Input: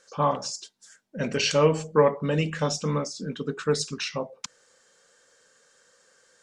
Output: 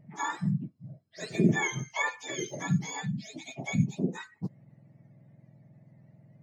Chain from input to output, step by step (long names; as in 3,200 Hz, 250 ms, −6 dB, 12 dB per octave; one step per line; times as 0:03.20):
frequency axis turned over on the octave scale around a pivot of 1,000 Hz
tilt shelving filter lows +3.5 dB, about 750 Hz
level −5 dB